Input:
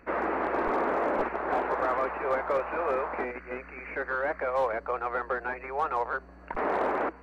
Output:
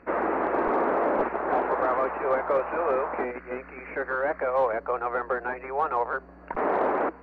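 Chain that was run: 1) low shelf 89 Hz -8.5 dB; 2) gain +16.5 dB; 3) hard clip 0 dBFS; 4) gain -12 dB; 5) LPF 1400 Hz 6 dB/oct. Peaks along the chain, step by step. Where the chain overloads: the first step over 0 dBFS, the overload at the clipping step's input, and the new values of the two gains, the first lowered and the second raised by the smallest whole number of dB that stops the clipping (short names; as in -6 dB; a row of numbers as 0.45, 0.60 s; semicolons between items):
-18.0, -1.5, -1.5, -13.5, -14.5 dBFS; no overload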